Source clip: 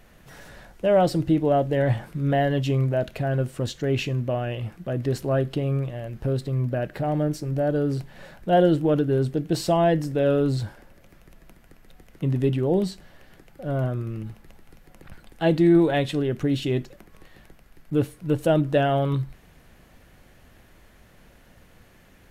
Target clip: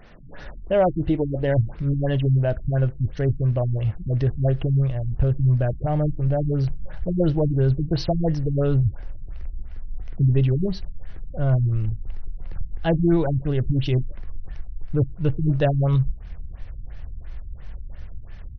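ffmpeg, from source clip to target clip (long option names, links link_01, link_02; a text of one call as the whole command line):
ffmpeg -i in.wav -filter_complex "[0:a]asubboost=boost=10.5:cutoff=75,asplit=2[link_01][link_02];[link_02]acompressor=threshold=-33dB:ratio=6,volume=-2dB[link_03];[link_01][link_03]amix=inputs=2:normalize=0,atempo=1.2,afftfilt=real='re*lt(b*sr/1024,280*pow(6400/280,0.5+0.5*sin(2*PI*2.9*pts/sr)))':imag='im*lt(b*sr/1024,280*pow(6400/280,0.5+0.5*sin(2*PI*2.9*pts/sr)))':win_size=1024:overlap=0.75" out.wav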